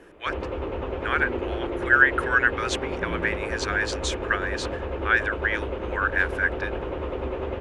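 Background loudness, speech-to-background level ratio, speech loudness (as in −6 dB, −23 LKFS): −31.0 LKFS, 6.0 dB, −25.0 LKFS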